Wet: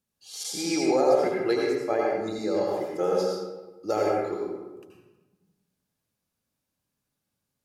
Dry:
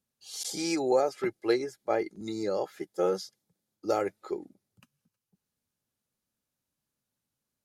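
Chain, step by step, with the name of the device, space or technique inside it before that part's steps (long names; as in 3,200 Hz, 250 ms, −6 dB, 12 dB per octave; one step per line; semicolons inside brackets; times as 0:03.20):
bathroom (convolution reverb RT60 1.2 s, pre-delay 73 ms, DRR −2.5 dB)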